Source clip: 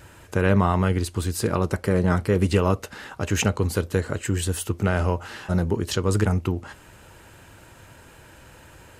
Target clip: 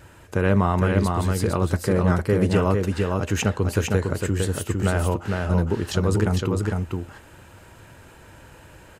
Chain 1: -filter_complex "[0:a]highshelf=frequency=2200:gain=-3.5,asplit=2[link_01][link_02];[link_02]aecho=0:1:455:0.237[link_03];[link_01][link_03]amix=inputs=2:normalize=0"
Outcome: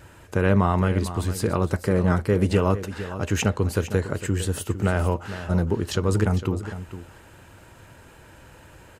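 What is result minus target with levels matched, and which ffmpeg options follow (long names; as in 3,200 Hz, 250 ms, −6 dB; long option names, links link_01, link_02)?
echo-to-direct −9 dB
-filter_complex "[0:a]highshelf=frequency=2200:gain=-3.5,asplit=2[link_01][link_02];[link_02]aecho=0:1:455:0.668[link_03];[link_01][link_03]amix=inputs=2:normalize=0"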